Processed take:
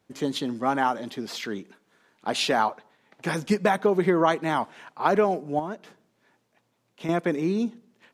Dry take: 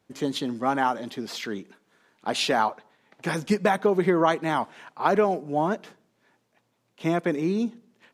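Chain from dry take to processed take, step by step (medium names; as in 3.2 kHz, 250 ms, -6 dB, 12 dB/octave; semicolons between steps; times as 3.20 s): 5.59–7.09 s: compression 2.5:1, threshold -33 dBFS, peak gain reduction 8.5 dB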